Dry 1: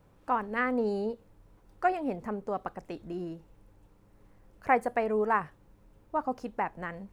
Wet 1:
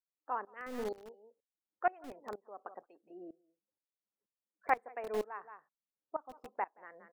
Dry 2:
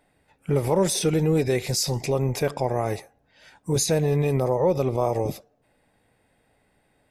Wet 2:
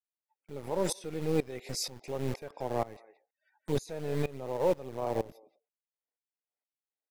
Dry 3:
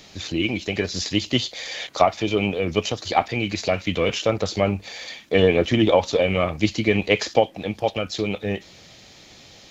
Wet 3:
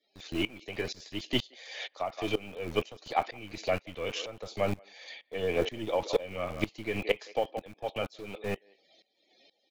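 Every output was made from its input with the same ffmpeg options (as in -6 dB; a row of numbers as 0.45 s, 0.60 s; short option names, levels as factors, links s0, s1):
-filter_complex "[0:a]afftdn=nr=28:nf=-46,highshelf=f=4200:g=-5.5,acrossover=split=320|3600[s0][s1][s2];[s0]acrusher=bits=3:dc=4:mix=0:aa=0.000001[s3];[s1]aecho=1:1:174:0.178[s4];[s3][s4][s2]amix=inputs=3:normalize=0,aeval=exprs='val(0)*pow(10,-20*if(lt(mod(-2.1*n/s,1),2*abs(-2.1)/1000),1-mod(-2.1*n/s,1)/(2*abs(-2.1)/1000),(mod(-2.1*n/s,1)-2*abs(-2.1)/1000)/(1-2*abs(-2.1)/1000))/20)':c=same,volume=0.708"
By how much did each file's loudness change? -8.5 LU, -10.5 LU, -11.5 LU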